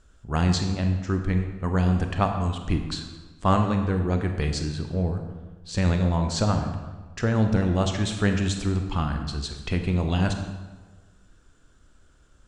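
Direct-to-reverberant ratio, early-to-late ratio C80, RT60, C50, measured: 5.0 dB, 8.0 dB, 1.4 s, 6.5 dB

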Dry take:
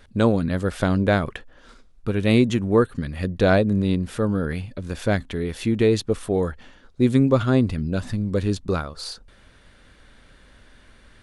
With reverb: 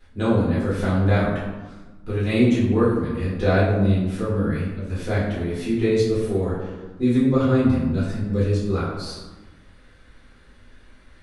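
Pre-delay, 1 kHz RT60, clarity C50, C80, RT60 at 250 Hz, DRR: 3 ms, 1.2 s, 1.5 dB, 4.0 dB, 1.6 s, -10.5 dB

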